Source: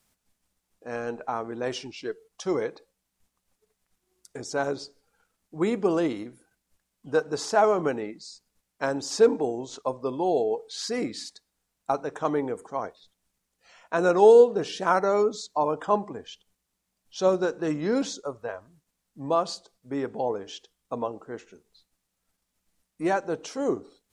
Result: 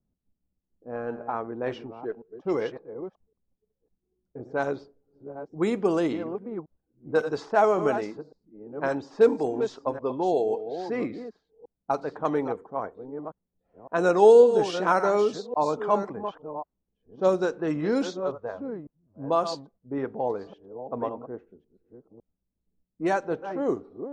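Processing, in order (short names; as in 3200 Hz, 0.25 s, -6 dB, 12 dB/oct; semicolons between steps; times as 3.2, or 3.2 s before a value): reverse delay 0.555 s, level -9.5 dB; low-pass opened by the level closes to 320 Hz, open at -19.5 dBFS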